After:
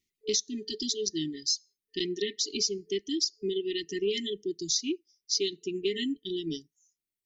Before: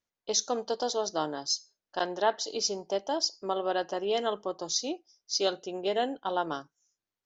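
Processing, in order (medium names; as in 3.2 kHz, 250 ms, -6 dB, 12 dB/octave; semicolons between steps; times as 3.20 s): reverb removal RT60 1.6 s; FFT band-reject 440–1800 Hz; compression 5:1, threshold -33 dBFS, peak gain reduction 10 dB; trim +7.5 dB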